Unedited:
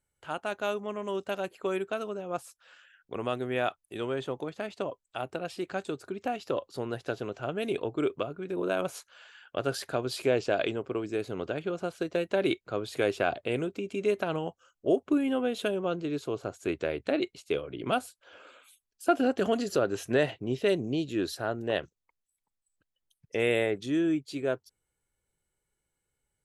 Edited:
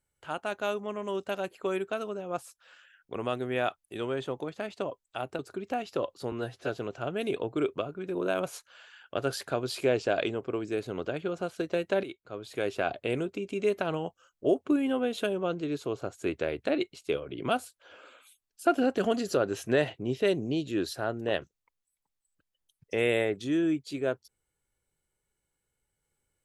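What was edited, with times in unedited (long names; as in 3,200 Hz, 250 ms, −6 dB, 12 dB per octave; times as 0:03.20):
0:05.39–0:05.93: remove
0:06.86–0:07.11: time-stretch 1.5×
0:12.45–0:13.50: fade in, from −15 dB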